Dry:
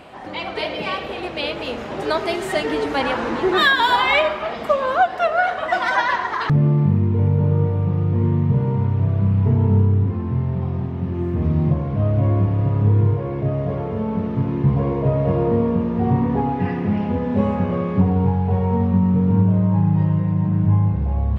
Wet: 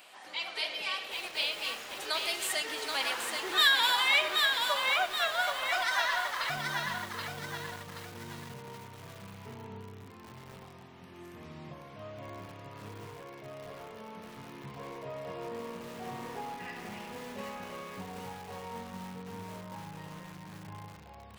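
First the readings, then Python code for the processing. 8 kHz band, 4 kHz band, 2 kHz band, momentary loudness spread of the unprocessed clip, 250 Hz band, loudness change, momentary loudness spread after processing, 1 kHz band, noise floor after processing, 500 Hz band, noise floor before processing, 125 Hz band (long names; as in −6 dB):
can't be measured, −1.5 dB, −7.0 dB, 8 LU, −26.5 dB, −11.5 dB, 21 LU, −13.0 dB, −50 dBFS, −18.5 dB, −29 dBFS, −31.5 dB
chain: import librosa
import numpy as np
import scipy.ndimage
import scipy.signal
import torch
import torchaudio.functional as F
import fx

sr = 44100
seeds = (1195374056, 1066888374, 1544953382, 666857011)

y = np.diff(x, prepend=0.0)
y = fx.echo_crushed(y, sr, ms=778, feedback_pct=55, bits=8, wet_db=-3.5)
y = y * 10.0 ** (3.0 / 20.0)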